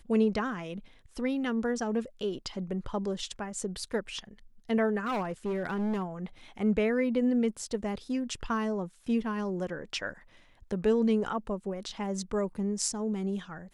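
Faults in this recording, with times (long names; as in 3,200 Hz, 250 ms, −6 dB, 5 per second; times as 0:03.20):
0:05.05–0:06.03: clipping −27.5 dBFS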